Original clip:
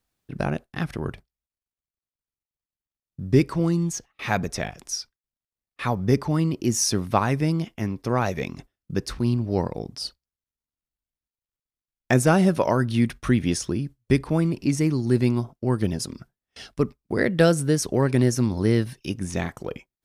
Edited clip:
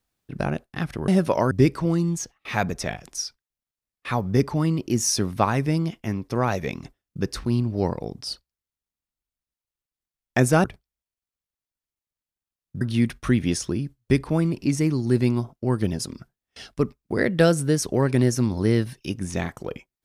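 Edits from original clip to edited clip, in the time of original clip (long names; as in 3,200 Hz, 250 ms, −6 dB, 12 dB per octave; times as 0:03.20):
0:01.08–0:03.25: swap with 0:12.38–0:12.81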